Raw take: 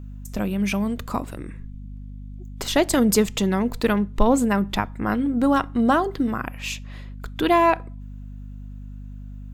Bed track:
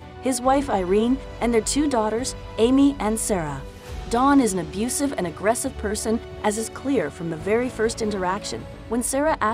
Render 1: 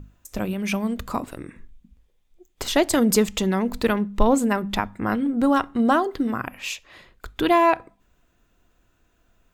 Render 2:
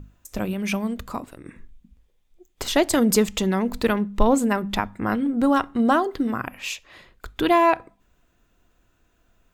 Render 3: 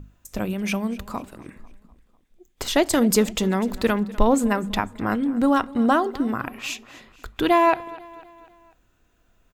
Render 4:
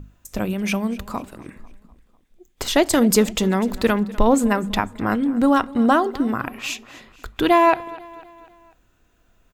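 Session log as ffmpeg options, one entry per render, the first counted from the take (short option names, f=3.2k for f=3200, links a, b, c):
-af "bandreject=f=50:t=h:w=6,bandreject=f=100:t=h:w=6,bandreject=f=150:t=h:w=6,bandreject=f=200:t=h:w=6,bandreject=f=250:t=h:w=6"
-filter_complex "[0:a]asplit=2[a][b];[a]atrim=end=1.45,asetpts=PTS-STARTPTS,afade=t=out:st=0.7:d=0.75:silence=0.398107[c];[b]atrim=start=1.45,asetpts=PTS-STARTPTS,afade=t=in:d=0.004:c=hsin:silence=0.398107[d];[c][d]concat=n=2:v=0:a=1"
-af "aecho=1:1:248|496|744|992:0.1|0.051|0.026|0.0133"
-af "volume=2.5dB,alimiter=limit=-3dB:level=0:latency=1"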